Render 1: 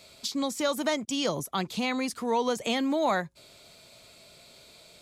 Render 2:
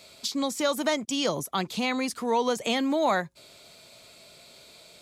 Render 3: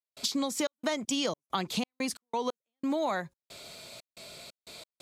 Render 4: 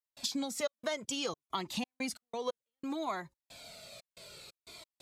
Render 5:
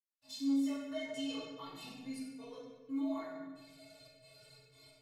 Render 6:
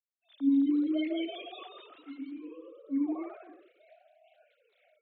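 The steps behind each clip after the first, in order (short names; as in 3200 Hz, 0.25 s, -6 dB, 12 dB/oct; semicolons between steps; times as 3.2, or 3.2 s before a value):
low shelf 110 Hz -6.5 dB; gain +2 dB
compressor, threshold -32 dBFS, peak gain reduction 11.5 dB; step gate ".xxx.xxx.xx.x.x." 90 bpm -60 dB; gain +4.5 dB
cascading flanger falling 0.62 Hz
metallic resonator 130 Hz, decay 0.27 s, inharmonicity 0.03; reverb RT60 1.3 s, pre-delay 47 ms; gain +3 dB
sine-wave speech; echoes that change speed 0.24 s, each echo +1 st, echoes 3; gain +4.5 dB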